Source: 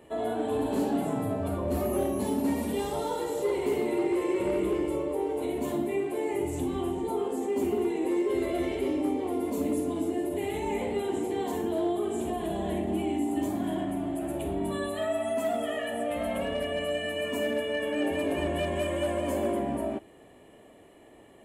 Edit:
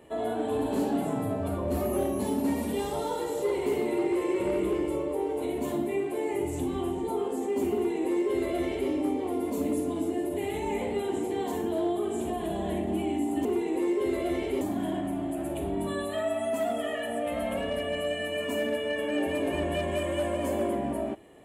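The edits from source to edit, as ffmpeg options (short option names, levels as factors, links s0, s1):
-filter_complex "[0:a]asplit=3[s0][s1][s2];[s0]atrim=end=13.452[s3];[s1]atrim=start=7.738:end=8.902[s4];[s2]atrim=start=13.448[s5];[s3][s4]acrossfade=d=0.004:c1=hsin:c2=hsin[s6];[s6][s5]acrossfade=d=0.004:c1=hsin:c2=hsin"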